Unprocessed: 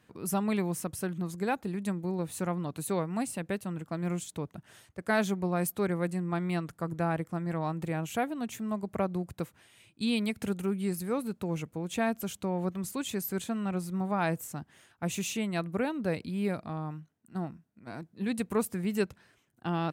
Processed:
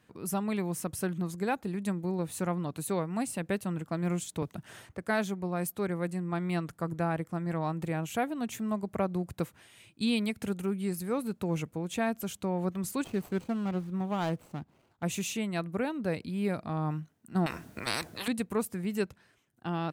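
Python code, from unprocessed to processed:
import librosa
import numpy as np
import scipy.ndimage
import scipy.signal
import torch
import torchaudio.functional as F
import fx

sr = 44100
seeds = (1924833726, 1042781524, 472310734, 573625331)

y = fx.band_squash(x, sr, depth_pct=70, at=(4.42, 5.04))
y = fx.median_filter(y, sr, points=25, at=(13.04, 15.03))
y = fx.spectral_comp(y, sr, ratio=10.0, at=(17.46, 18.28))
y = fx.rider(y, sr, range_db=10, speed_s=0.5)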